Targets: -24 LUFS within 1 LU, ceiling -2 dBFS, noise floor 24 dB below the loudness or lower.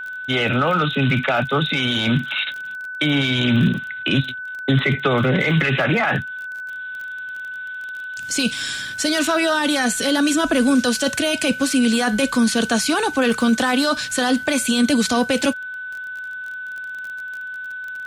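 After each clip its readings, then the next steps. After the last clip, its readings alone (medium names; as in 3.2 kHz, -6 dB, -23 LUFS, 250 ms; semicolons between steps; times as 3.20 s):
tick rate 24 per s; steady tone 1.5 kHz; tone level -28 dBFS; loudness -20.0 LUFS; peak level -6.5 dBFS; loudness target -24.0 LUFS
-> de-click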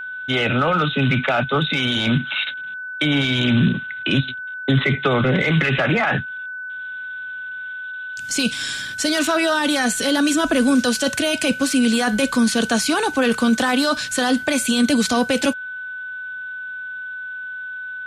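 tick rate 0 per s; steady tone 1.5 kHz; tone level -28 dBFS
-> band-stop 1.5 kHz, Q 30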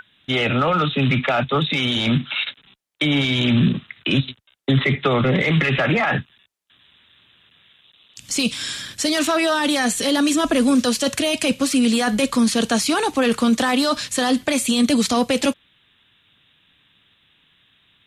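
steady tone not found; loudness -19.5 LUFS; peak level -7.0 dBFS; loudness target -24.0 LUFS
-> trim -4.5 dB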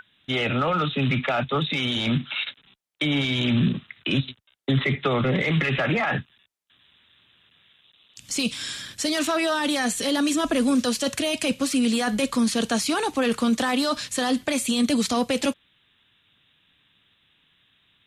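loudness -24.0 LUFS; peak level -11.5 dBFS; noise floor -65 dBFS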